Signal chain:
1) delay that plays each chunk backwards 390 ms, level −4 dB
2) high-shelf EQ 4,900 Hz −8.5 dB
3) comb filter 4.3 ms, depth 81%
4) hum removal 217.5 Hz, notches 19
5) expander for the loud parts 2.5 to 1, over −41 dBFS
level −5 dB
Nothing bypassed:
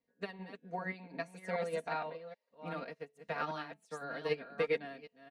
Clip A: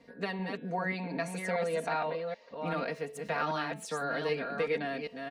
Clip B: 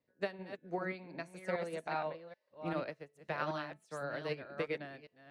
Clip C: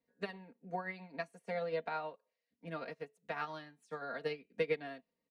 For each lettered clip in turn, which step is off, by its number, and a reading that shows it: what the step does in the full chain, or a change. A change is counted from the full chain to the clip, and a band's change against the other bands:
5, 8 kHz band +6.5 dB
3, 250 Hz band +3.0 dB
1, change in momentary loudness spread −2 LU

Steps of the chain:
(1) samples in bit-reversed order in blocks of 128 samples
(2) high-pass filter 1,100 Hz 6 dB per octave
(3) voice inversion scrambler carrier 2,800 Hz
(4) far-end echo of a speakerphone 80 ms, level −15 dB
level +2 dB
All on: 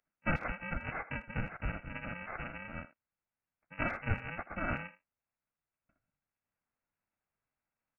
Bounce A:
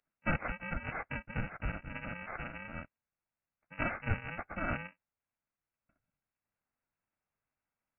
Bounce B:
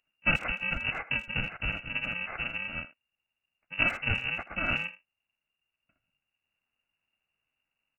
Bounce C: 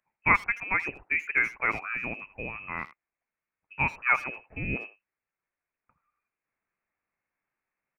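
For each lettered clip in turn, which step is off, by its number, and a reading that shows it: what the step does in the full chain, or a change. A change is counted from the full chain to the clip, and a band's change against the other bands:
4, echo-to-direct ratio −18.5 dB to none audible
2, 2 kHz band +9.0 dB
1, 2 kHz band +10.5 dB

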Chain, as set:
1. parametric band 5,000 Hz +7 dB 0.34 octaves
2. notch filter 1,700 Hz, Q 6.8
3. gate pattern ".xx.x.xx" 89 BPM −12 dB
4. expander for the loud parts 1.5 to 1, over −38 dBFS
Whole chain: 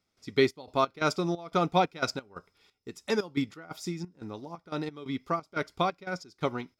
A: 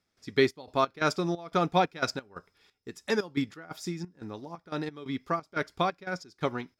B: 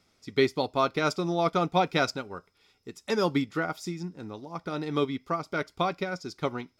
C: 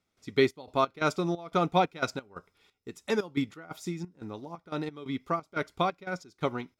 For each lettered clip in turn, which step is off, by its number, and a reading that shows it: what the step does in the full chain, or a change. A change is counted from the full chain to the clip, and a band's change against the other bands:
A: 2, 2 kHz band +1.5 dB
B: 3, change in crest factor −2.0 dB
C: 1, 8 kHz band −2.5 dB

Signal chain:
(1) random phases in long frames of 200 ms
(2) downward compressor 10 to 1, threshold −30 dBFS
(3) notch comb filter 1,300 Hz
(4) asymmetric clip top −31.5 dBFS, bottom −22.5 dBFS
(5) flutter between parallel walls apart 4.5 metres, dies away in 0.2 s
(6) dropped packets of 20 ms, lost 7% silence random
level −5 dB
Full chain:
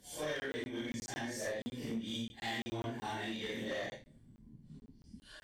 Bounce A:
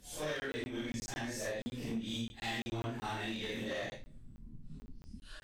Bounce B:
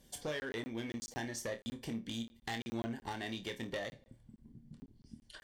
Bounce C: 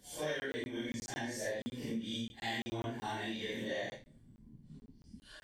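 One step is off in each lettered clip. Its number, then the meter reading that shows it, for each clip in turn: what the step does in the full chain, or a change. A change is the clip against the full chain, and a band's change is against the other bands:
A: 3, 125 Hz band +2.5 dB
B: 1, 8 kHz band +2.0 dB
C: 4, distortion level −16 dB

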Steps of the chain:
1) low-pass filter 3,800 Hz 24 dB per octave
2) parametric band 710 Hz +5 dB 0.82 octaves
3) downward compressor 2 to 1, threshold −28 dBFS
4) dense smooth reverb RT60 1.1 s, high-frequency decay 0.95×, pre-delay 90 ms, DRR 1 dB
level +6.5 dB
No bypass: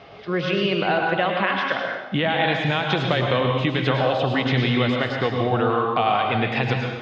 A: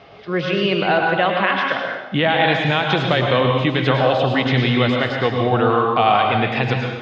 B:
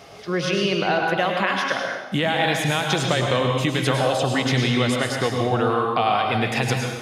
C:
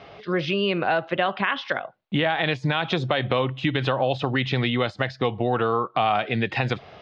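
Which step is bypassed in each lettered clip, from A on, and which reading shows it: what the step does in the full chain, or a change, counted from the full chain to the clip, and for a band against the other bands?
3, average gain reduction 3.0 dB
1, 4 kHz band +1.5 dB
4, change in integrated loudness −2.5 LU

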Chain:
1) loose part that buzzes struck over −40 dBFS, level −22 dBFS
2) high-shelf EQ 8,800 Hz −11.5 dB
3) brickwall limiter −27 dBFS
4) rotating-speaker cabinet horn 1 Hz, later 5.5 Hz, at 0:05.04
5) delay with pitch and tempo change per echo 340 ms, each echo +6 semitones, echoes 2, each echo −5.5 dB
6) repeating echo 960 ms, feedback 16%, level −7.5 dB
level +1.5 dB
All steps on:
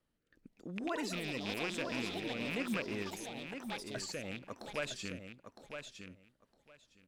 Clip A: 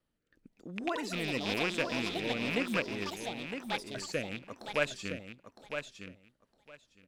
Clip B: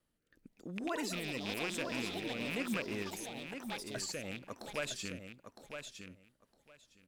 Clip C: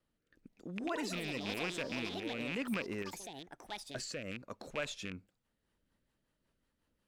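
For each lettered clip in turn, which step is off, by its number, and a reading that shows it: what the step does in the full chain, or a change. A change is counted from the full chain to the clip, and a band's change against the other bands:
3, average gain reduction 2.5 dB
2, 8 kHz band +3.5 dB
6, change in momentary loudness spread −3 LU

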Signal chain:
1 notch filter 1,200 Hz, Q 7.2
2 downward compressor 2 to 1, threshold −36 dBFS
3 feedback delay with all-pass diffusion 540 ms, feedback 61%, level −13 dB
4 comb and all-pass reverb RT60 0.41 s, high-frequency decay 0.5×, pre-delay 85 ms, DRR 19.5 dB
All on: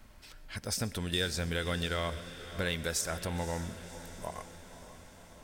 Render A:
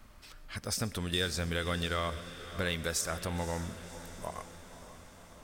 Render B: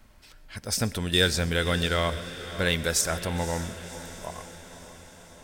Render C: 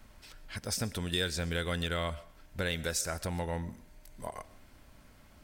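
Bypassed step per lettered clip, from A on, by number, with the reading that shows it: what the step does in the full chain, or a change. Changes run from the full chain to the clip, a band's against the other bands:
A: 1, 1 kHz band +1.5 dB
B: 2, average gain reduction 4.0 dB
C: 3, echo-to-direct ratio −10.5 dB to −19.5 dB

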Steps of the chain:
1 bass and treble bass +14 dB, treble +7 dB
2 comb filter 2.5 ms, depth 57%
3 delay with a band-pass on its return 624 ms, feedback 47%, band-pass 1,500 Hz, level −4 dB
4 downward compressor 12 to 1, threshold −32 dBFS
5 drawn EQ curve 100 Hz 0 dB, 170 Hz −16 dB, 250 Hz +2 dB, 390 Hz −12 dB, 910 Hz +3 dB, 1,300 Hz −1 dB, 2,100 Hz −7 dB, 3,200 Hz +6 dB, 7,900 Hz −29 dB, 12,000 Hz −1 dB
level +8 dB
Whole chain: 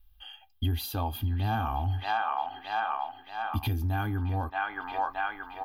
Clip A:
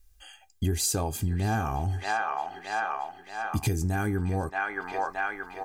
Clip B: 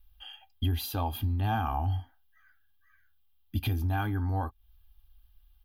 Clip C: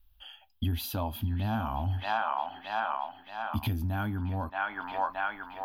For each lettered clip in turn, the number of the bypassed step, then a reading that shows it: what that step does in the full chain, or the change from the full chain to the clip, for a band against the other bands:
5, 500 Hz band +5.0 dB
3, 2 kHz band −6.5 dB
2, change in integrated loudness −1.5 LU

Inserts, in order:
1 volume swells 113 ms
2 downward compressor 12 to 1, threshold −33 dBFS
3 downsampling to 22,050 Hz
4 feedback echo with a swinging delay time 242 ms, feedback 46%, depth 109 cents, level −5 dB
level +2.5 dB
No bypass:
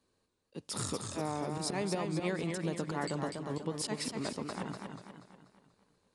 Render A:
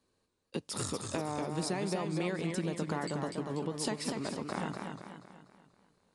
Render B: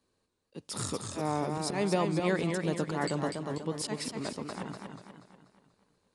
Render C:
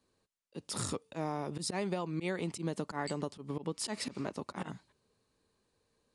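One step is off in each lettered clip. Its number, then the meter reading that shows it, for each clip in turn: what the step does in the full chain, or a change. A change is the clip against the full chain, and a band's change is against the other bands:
1, change in momentary loudness spread −4 LU
2, average gain reduction 2.5 dB
4, change in momentary loudness spread −6 LU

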